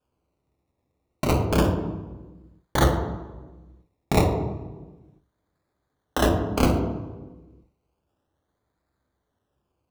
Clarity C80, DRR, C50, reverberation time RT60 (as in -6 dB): 7.5 dB, 3.0 dB, 6.0 dB, 1.3 s